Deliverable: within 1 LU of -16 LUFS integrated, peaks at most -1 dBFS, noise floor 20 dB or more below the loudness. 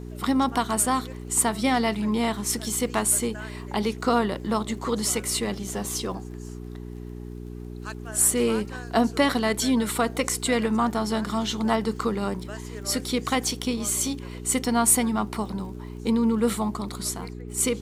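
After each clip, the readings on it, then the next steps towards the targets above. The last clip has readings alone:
tick rate 27 per s; hum 60 Hz; highest harmonic 420 Hz; hum level -35 dBFS; loudness -25.0 LUFS; peak level -6.0 dBFS; loudness target -16.0 LUFS
-> de-click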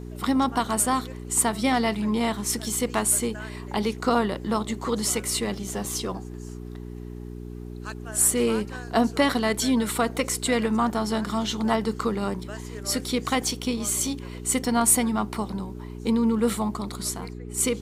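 tick rate 0 per s; hum 60 Hz; highest harmonic 420 Hz; hum level -35 dBFS
-> de-hum 60 Hz, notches 7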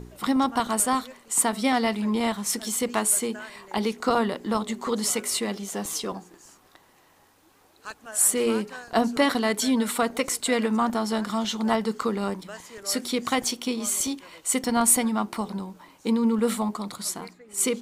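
hum not found; loudness -25.0 LUFS; peak level -6.0 dBFS; loudness target -16.0 LUFS
-> trim +9 dB; peak limiter -1 dBFS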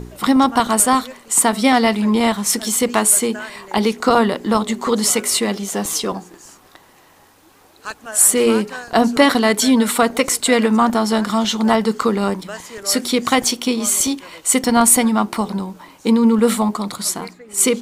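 loudness -16.5 LUFS; peak level -1.0 dBFS; noise floor -50 dBFS

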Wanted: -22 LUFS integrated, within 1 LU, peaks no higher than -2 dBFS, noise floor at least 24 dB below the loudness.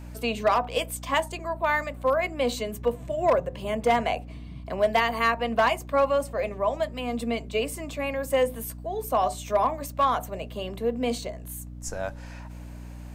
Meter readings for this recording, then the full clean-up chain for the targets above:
clipped samples 0.3%; clipping level -14.5 dBFS; hum 60 Hz; highest harmonic 300 Hz; hum level -38 dBFS; loudness -27.0 LUFS; peak level -14.5 dBFS; loudness target -22.0 LUFS
-> clip repair -14.5 dBFS; hum notches 60/120/180/240/300 Hz; trim +5 dB

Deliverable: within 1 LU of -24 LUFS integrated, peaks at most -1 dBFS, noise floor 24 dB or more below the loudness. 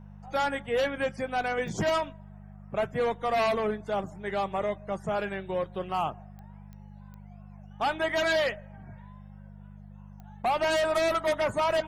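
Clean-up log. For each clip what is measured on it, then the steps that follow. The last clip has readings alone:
clicks found 5; hum 50 Hz; highest harmonic 200 Hz; hum level -45 dBFS; loudness -29.0 LUFS; peak level -18.0 dBFS; loudness target -24.0 LUFS
-> de-click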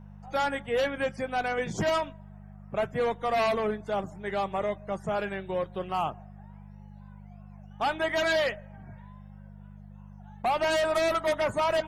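clicks found 0; hum 50 Hz; highest harmonic 200 Hz; hum level -45 dBFS
-> de-hum 50 Hz, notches 4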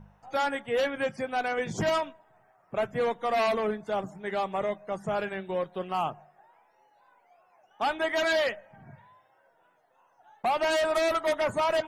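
hum not found; loudness -29.0 LUFS; peak level -18.5 dBFS; loudness target -24.0 LUFS
-> trim +5 dB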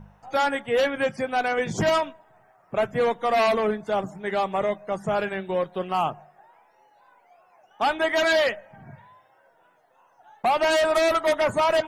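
loudness -24.0 LUFS; peak level -13.5 dBFS; noise floor -61 dBFS

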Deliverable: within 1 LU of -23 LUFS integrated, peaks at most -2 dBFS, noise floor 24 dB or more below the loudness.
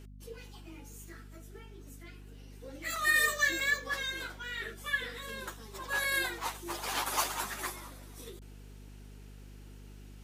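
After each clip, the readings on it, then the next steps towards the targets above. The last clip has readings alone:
dropouts 7; longest dropout 2.1 ms; hum 50 Hz; highest harmonic 250 Hz; hum level -47 dBFS; loudness -32.0 LUFS; peak level -14.5 dBFS; loudness target -23.0 LUFS
-> interpolate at 2.96/3.60/4.57/5.29/6.04/6.70/7.24 s, 2.1 ms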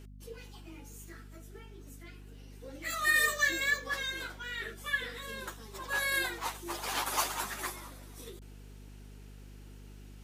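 dropouts 0; hum 50 Hz; highest harmonic 250 Hz; hum level -47 dBFS
-> hum notches 50/100/150/200/250 Hz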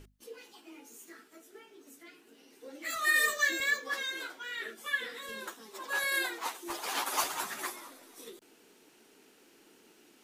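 hum not found; loudness -32.0 LUFS; peak level -15.0 dBFS; loudness target -23.0 LUFS
-> trim +9 dB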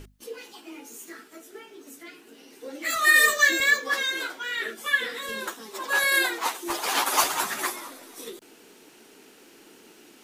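loudness -23.0 LUFS; peak level -6.0 dBFS; noise floor -53 dBFS

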